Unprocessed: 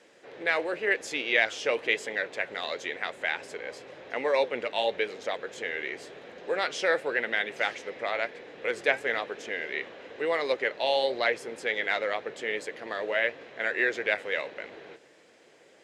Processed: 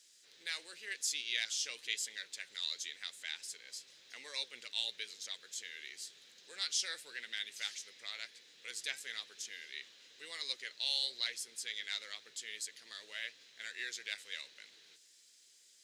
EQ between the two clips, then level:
spectral tilt +4 dB per octave
guitar amp tone stack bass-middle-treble 6-0-2
high shelf with overshoot 3,200 Hz +7 dB, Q 1.5
+1.5 dB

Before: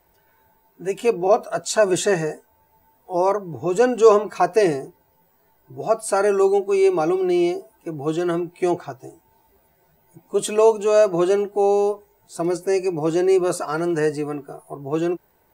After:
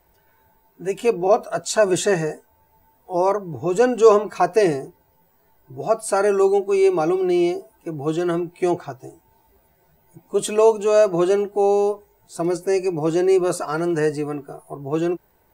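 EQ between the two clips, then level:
low-shelf EQ 93 Hz +6 dB
0.0 dB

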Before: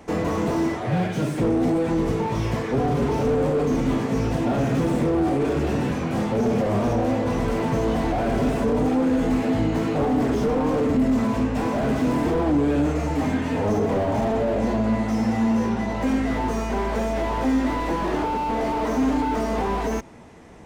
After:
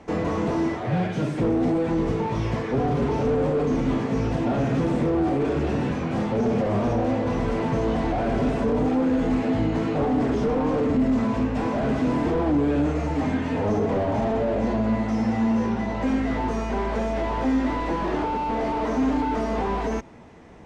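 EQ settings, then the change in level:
high-frequency loss of the air 73 metres
−1.0 dB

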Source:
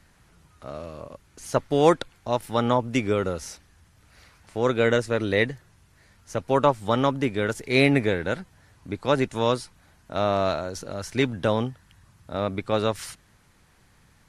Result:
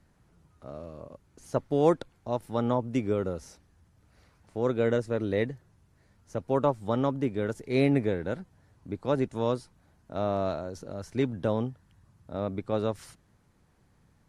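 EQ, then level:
low-shelf EQ 61 Hz −6.5 dB
parametric band 2,400 Hz −10 dB 2.9 octaves
high-shelf EQ 6,800 Hz −11.5 dB
−2.0 dB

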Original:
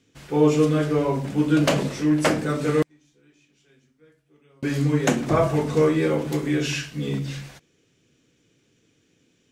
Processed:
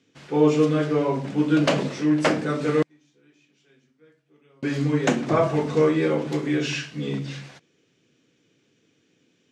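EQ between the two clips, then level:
band-pass filter 140–6,000 Hz
0.0 dB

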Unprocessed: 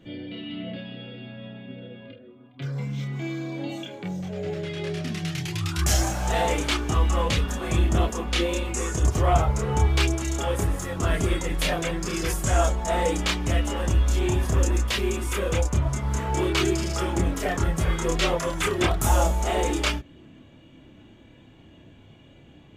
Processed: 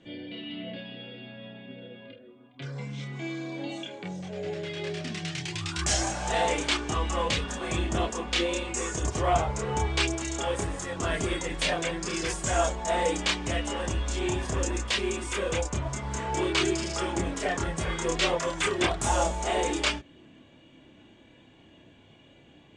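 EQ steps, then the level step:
elliptic low-pass filter 8,700 Hz, stop band 70 dB
low-shelf EQ 180 Hz −10 dB
notch filter 1,300 Hz, Q 16
0.0 dB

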